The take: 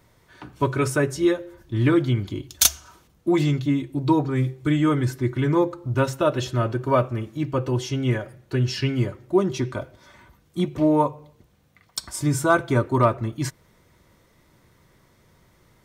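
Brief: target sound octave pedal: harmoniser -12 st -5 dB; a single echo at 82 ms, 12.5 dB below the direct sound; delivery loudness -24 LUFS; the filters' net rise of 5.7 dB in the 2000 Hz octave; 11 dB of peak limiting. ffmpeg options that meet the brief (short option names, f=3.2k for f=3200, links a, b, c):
-filter_complex "[0:a]equalizer=f=2k:t=o:g=8,alimiter=limit=-13.5dB:level=0:latency=1,aecho=1:1:82:0.237,asplit=2[a][b];[b]asetrate=22050,aresample=44100,atempo=2,volume=-5dB[c];[a][c]amix=inputs=2:normalize=0"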